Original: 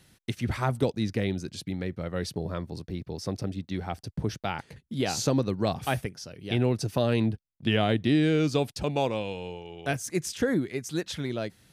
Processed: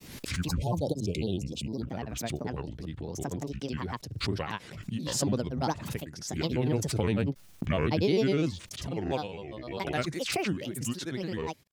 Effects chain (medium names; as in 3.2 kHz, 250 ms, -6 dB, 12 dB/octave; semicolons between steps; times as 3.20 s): spectral selection erased 0.48–1.83 s, 800–2700 Hz; granulator 100 ms, grains 20 per s, pitch spread up and down by 7 st; swell ahead of each attack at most 58 dB/s; trim -2 dB